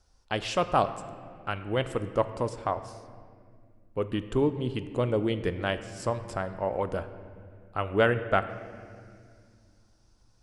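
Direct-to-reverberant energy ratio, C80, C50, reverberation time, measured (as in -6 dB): 10.5 dB, 12.5 dB, 12.0 dB, 2.1 s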